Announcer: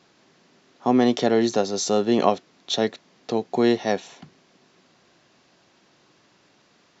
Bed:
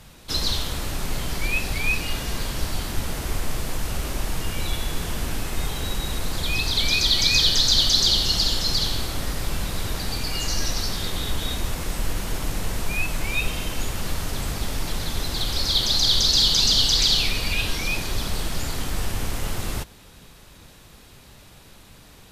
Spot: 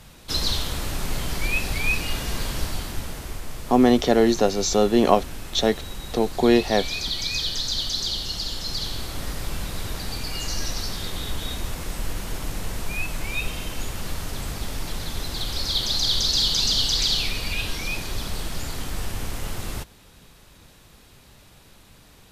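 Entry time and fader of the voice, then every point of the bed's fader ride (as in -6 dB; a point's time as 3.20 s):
2.85 s, +2.0 dB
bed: 2.56 s 0 dB
3.42 s -8 dB
8.43 s -8 dB
9.26 s -3 dB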